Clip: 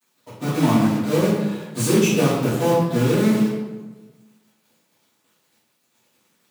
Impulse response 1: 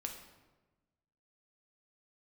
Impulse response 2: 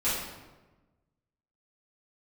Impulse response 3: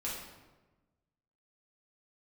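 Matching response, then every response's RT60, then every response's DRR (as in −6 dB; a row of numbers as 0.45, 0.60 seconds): 2; 1.2, 1.2, 1.2 seconds; 2.5, −13.0, −7.0 decibels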